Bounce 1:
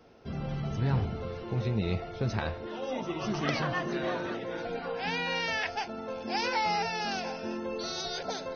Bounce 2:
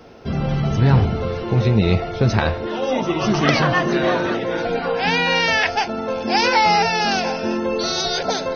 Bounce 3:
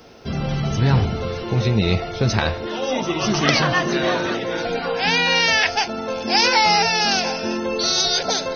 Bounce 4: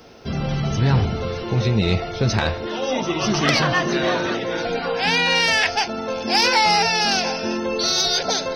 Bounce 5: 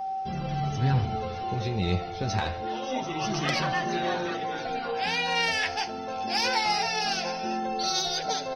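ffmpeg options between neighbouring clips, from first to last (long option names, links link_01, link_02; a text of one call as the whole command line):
ffmpeg -i in.wav -af "acontrast=26,volume=8.5dB" out.wav
ffmpeg -i in.wav -af "highshelf=frequency=3500:gain=11.5,volume=-2.5dB" out.wav
ffmpeg -i in.wav -af "asoftclip=type=tanh:threshold=-6dB" out.wav
ffmpeg -i in.wav -af "aeval=exprs='val(0)+0.0708*sin(2*PI*770*n/s)':channel_layout=same,flanger=delay=5.1:depth=6.1:regen=39:speed=0.26:shape=sinusoidal,aecho=1:1:73|146|219|292:0.106|0.0561|0.0298|0.0158,volume=-5.5dB" out.wav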